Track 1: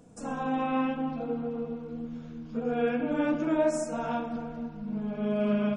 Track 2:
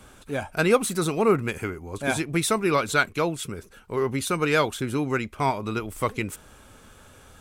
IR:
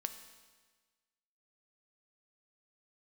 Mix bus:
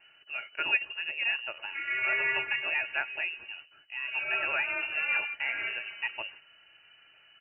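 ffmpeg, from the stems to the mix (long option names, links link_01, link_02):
-filter_complex "[0:a]highpass=780,adelay=1500,volume=2dB[link_01];[1:a]volume=-11dB,asplit=3[link_02][link_03][link_04];[link_03]volume=-14.5dB[link_05];[link_04]apad=whole_len=320408[link_06];[link_01][link_06]sidechaingate=range=-33dB:threshold=-49dB:ratio=16:detection=peak[link_07];[2:a]atrim=start_sample=2205[link_08];[link_05][link_08]afir=irnorm=-1:irlink=0[link_09];[link_07][link_02][link_09]amix=inputs=3:normalize=0,aecho=1:1:3.8:0.46,lowpass=frequency=2600:width_type=q:width=0.5098,lowpass=frequency=2600:width_type=q:width=0.6013,lowpass=frequency=2600:width_type=q:width=0.9,lowpass=frequency=2600:width_type=q:width=2.563,afreqshift=-3000"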